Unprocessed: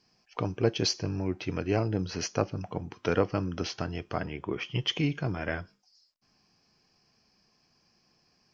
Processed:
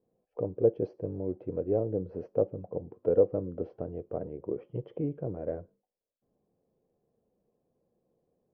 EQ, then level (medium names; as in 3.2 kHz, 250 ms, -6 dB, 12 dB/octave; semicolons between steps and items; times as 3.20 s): resonant low-pass 510 Hz, resonance Q 4.9; -7.0 dB